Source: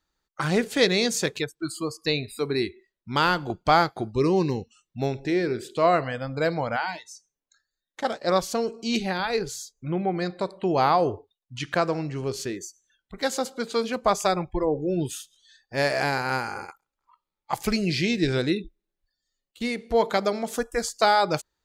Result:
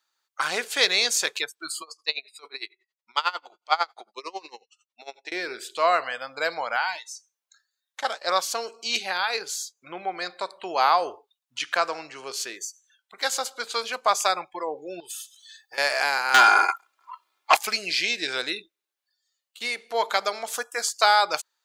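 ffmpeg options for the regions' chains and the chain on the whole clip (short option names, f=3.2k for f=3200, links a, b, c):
-filter_complex "[0:a]asettb=1/sr,asplit=3[a][b][c];[a]atrim=end=1.824[d];[b]atrim=start=1.82:end=5.32,asetpts=PTS-STARTPTS,afade=t=in:d=0.004:c=qsin,afade=t=out:st=3.496:d=0.004:c=qsin,highpass=430,lowpass=7k,bandreject=f=1.6k:w=7,aeval=exprs='val(0)*pow(10,-24*(0.5-0.5*cos(2*PI*11*n/s))/20)':c=same[e];[c]atrim=start=5.316[f];[d][e]acrossfade=d=0.004:c1=hsin:c2=qsin[g];[g][f]acrossfade=d=0.004:c1=qsin:c2=hsin,asettb=1/sr,asplit=3[h][i][j];[h]atrim=end=15.004[k];[i]atrim=start=15:end=15.78,asetpts=PTS-STARTPTS,afade=t=in:d=0.004:c=qsin,afade=t=out:st=0.776:d=0.004:c=qsin,highshelf=f=9.2k:g=10,aecho=1:1:2.3:0.73,atrim=end_sample=34398,acompressor=threshold=-37dB:ratio=8:attack=3.2:release=140:knee=1:detection=peak[l];[j]atrim=start=15.776[m];[k][l]acrossfade=d=0.004:c1=hsin:c2=qsin[n];[n][m]acrossfade=d=0.004:c1=qsin:c2=hsin,asettb=1/sr,asplit=3[o][p][q];[o]atrim=end=16.344[r];[p]atrim=start=16.34:end=17.57,asetpts=PTS-STARTPTS,afade=t=in:d=0.004:c=qsin,afade=t=out:st=1.226:d=0.004:c=qsin,highshelf=f=4.1k:g=-10,aecho=1:1:2.9:0.71,atrim=end_sample=54243,aeval=exprs='0.299*sin(PI/2*3.55*val(0)/0.299)':c=same[s];[q]atrim=start=17.566[t];[r][s]acrossfade=d=0.004:c1=hsin:c2=qsin[u];[u][t]acrossfade=d=0.004:c1=qsin:c2=hsin,deesser=0.4,highpass=950,equalizer=f=1.9k:w=6.2:g=-3.5,volume=5dB"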